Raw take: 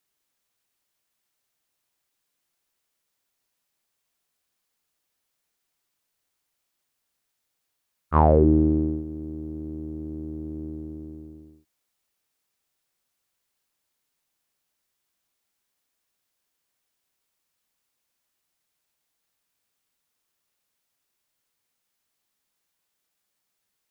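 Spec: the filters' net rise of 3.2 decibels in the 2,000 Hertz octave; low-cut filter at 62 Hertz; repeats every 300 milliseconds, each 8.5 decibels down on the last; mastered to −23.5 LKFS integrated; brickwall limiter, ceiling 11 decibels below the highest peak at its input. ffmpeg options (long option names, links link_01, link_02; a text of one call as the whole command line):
ffmpeg -i in.wav -af "highpass=62,equalizer=frequency=2000:width_type=o:gain=4.5,alimiter=limit=-13.5dB:level=0:latency=1,aecho=1:1:300|600|900|1200:0.376|0.143|0.0543|0.0206,volume=6.5dB" out.wav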